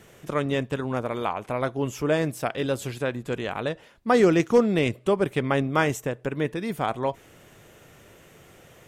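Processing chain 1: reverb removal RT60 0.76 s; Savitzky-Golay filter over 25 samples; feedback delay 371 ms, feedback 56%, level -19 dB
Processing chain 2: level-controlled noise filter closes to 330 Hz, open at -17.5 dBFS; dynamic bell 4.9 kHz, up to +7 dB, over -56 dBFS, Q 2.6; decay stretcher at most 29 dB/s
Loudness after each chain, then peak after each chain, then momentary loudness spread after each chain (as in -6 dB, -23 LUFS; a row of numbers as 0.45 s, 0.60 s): -26.5 LUFS, -23.5 LUFS; -8.0 dBFS, -3.5 dBFS; 10 LU, 11 LU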